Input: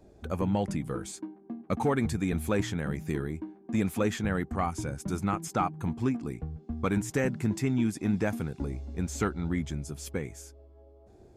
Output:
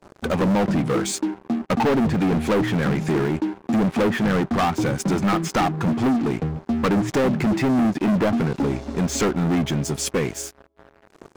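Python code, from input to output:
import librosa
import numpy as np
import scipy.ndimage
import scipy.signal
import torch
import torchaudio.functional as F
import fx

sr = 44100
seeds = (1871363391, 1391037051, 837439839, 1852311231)

y = scipy.signal.sosfilt(scipy.signal.butter(2, 160.0, 'highpass', fs=sr, output='sos'), x)
y = fx.env_lowpass_down(y, sr, base_hz=850.0, full_db=-23.5)
y = fx.leveller(y, sr, passes=5)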